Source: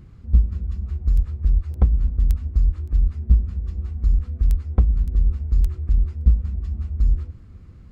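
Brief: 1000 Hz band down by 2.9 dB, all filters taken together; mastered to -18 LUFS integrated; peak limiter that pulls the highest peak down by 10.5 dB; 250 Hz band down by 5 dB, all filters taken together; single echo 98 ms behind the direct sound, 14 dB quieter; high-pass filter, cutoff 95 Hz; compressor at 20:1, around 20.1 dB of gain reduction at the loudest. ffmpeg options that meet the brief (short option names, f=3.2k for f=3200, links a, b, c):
-af "highpass=95,equalizer=f=250:t=o:g=-7,equalizer=f=1k:t=o:g=-3.5,acompressor=threshold=-38dB:ratio=20,alimiter=level_in=13dB:limit=-24dB:level=0:latency=1,volume=-13dB,aecho=1:1:98:0.2,volume=28dB"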